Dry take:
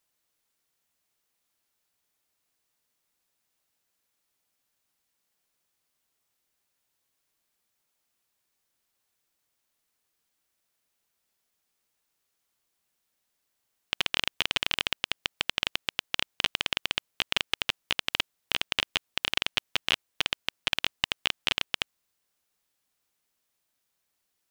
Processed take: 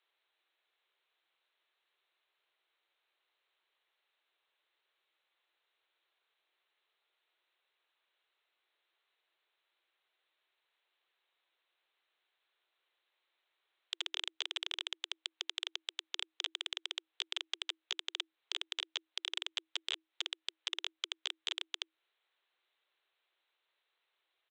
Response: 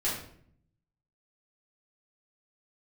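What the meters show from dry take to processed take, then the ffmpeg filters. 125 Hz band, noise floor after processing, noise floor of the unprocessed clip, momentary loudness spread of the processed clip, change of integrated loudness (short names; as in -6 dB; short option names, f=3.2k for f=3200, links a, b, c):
under -40 dB, under -85 dBFS, -79 dBFS, 4 LU, -10.5 dB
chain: -af "aresample=8000,aresample=44100,acompressor=threshold=-33dB:ratio=6,aresample=16000,asoftclip=type=tanh:threshold=-24.5dB,aresample=44100,afreqshift=320,tiltshelf=f=970:g=-3.5,volume=1dB"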